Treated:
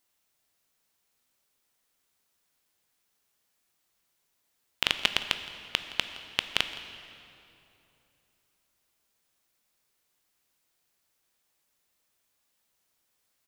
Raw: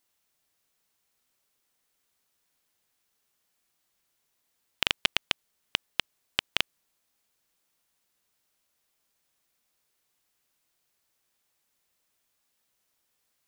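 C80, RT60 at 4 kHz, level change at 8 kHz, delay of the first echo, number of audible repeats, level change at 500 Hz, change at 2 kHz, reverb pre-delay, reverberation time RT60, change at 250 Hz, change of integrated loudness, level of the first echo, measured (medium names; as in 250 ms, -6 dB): 10.0 dB, 2.2 s, +0.5 dB, 167 ms, 1, +0.5 dB, +0.5 dB, 12 ms, 3.0 s, +0.5 dB, +0.5 dB, -18.5 dB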